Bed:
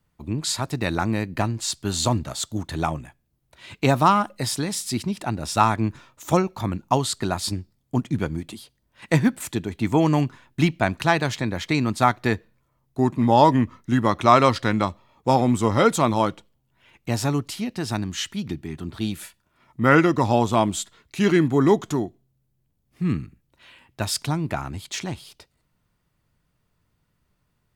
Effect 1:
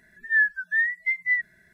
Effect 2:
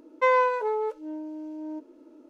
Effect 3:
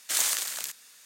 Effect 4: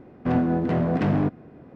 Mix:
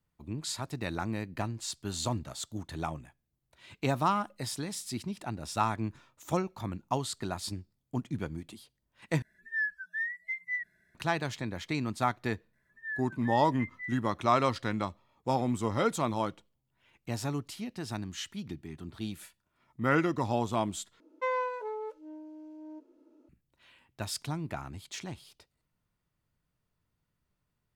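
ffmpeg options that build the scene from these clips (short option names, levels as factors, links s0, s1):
-filter_complex "[1:a]asplit=2[s0][s1];[0:a]volume=0.299[s2];[s0]acontrast=33[s3];[s2]asplit=3[s4][s5][s6];[s4]atrim=end=9.224[s7];[s3]atrim=end=1.73,asetpts=PTS-STARTPTS,volume=0.158[s8];[s5]atrim=start=10.946:end=21.004[s9];[2:a]atrim=end=2.29,asetpts=PTS-STARTPTS,volume=0.316[s10];[s6]atrim=start=23.286[s11];[s1]atrim=end=1.73,asetpts=PTS-STARTPTS,volume=0.133,afade=t=in:d=0.004:c=hsin,afade=t=out:st=1.726:d=0.004:c=hsin,adelay=12530[s12];[s7][s8]acrossfade=d=0.004:c1=hsin:c2=hsin[s13];[s13][s9]acrossfade=d=0.004:c1=hsin:c2=hsin[s14];[s14][s10]acrossfade=d=0.004:c1=hsin:c2=hsin[s15];[s15][s11]acrossfade=d=0.004:c1=hsin:c2=hsin[s16];[s16][s12]amix=inputs=2:normalize=0"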